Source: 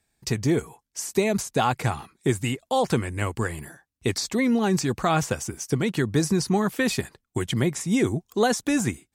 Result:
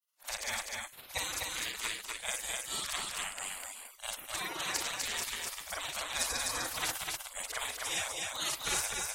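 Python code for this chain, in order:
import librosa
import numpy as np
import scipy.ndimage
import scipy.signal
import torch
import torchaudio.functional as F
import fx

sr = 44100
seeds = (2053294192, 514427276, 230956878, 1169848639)

y = fx.frame_reverse(x, sr, frame_ms=124.0)
y = fx.spec_gate(y, sr, threshold_db=-25, keep='weak')
y = y + 10.0 ** (-3.0 / 20.0) * np.pad(y, (int(251 * sr / 1000.0), 0))[:len(y)]
y = y * librosa.db_to_amplitude(5.5)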